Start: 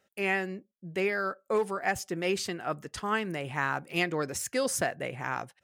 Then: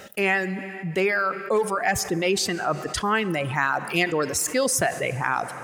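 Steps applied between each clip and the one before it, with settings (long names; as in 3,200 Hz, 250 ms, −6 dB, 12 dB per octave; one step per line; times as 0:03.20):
reverb reduction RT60 1.9 s
convolution reverb RT60 2.7 s, pre-delay 18 ms, DRR 19.5 dB
envelope flattener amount 50%
level +5 dB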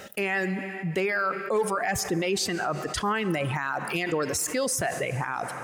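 brickwall limiter −18 dBFS, peak gain reduction 10 dB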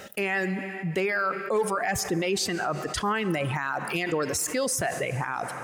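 no processing that can be heard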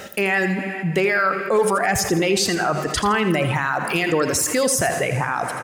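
repeating echo 82 ms, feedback 34%, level −10 dB
level +7 dB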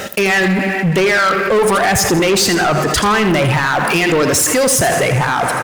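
leveller curve on the samples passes 3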